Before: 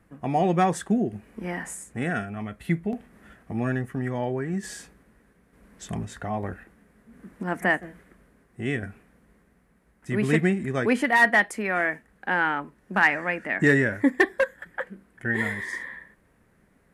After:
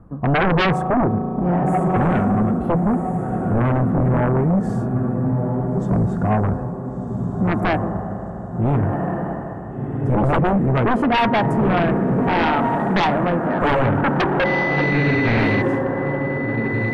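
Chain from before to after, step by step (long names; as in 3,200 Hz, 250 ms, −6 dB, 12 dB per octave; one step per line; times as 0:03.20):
drawn EQ curve 130 Hz 0 dB, 360 Hz −6 dB, 1,200 Hz −6 dB, 2,000 Hz −29 dB
0:14.44–0:15.61: steady tone 2,000 Hz −38 dBFS
feedback delay with all-pass diffusion 1,407 ms, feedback 41%, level −7 dB
spring reverb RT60 3.5 s, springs 35 ms, chirp 55 ms, DRR 11 dB
sine wavefolder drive 14 dB, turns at −13.5 dBFS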